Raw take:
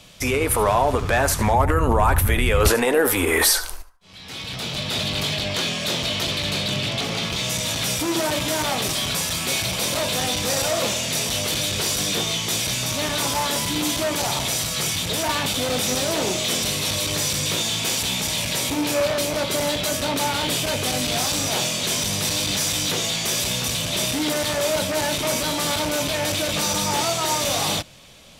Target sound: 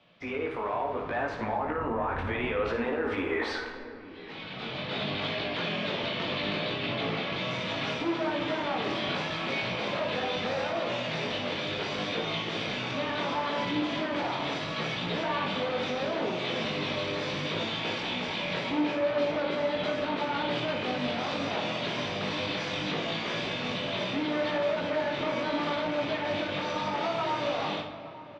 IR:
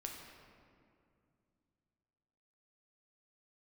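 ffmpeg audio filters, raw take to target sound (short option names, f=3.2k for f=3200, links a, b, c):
-filter_complex "[0:a]lowpass=f=4.6k:w=0.5412,lowpass=f=4.6k:w=1.3066,acrossover=split=150 2900:gain=0.141 1 0.178[a][b][c];[a][b][c]amix=inputs=3:normalize=0,dynaudnorm=f=450:g=7:m=8dB,alimiter=limit=-12dB:level=0:latency=1:release=72,flanger=delay=17:depth=5.2:speed=0.73,asplit=2[d][e];[e]adelay=874.6,volume=-16dB,highshelf=f=4k:g=-19.7[f];[d][f]amix=inputs=2:normalize=0,asplit=2[g][h];[1:a]atrim=start_sample=2205,adelay=57[i];[h][i]afir=irnorm=-1:irlink=0,volume=-3.5dB[j];[g][j]amix=inputs=2:normalize=0,volume=-7.5dB"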